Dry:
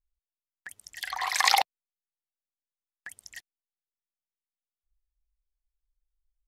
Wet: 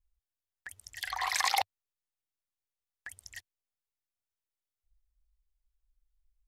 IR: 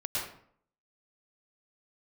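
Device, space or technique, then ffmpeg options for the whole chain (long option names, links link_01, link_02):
car stereo with a boomy subwoofer: -af "lowshelf=frequency=120:width_type=q:width=3:gain=7,alimiter=limit=-12.5dB:level=0:latency=1:release=106,volume=-2dB"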